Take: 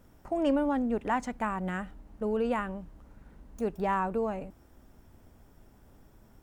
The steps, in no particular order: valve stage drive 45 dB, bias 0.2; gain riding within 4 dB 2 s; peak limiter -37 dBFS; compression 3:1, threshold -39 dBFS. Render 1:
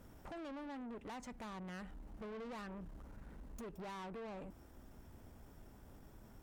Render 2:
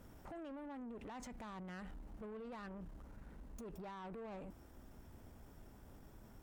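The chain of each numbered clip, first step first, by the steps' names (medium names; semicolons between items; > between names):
compression > gain riding > valve stage > peak limiter; gain riding > peak limiter > compression > valve stage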